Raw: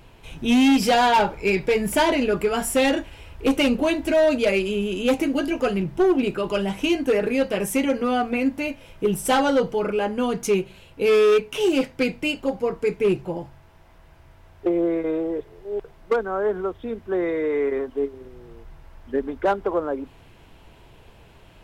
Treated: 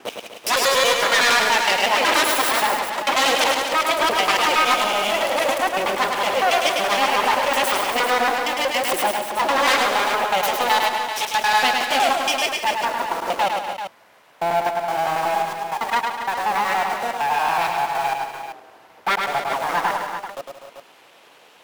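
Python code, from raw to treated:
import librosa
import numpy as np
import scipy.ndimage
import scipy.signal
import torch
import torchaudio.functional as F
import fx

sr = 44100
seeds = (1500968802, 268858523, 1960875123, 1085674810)

p1 = fx.block_reorder(x, sr, ms=93.0, group=5)
p2 = np.abs(p1)
p3 = scipy.signal.sosfilt(scipy.signal.butter(2, 500.0, 'highpass', fs=sr, output='sos'), p2)
p4 = fx.quant_companded(p3, sr, bits=2)
p5 = p3 + (p4 * librosa.db_to_amplitude(-10.0))
p6 = fx.echo_multitap(p5, sr, ms=(105, 176, 246, 284, 389), db=(-4.5, -12.0, -11.5, -12.5, -9.5))
y = p6 * librosa.db_to_amplitude(5.0)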